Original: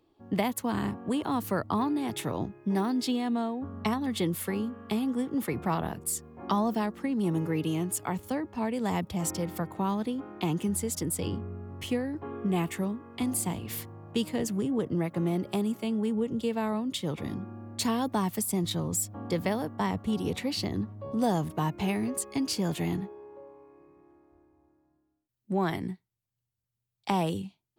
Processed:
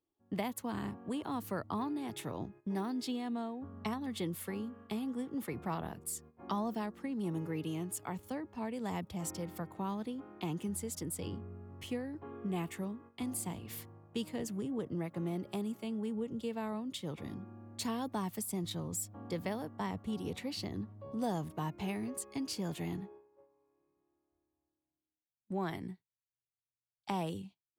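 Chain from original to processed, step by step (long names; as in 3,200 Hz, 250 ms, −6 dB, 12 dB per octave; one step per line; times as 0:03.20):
noise gate −45 dBFS, range −13 dB
level −8.5 dB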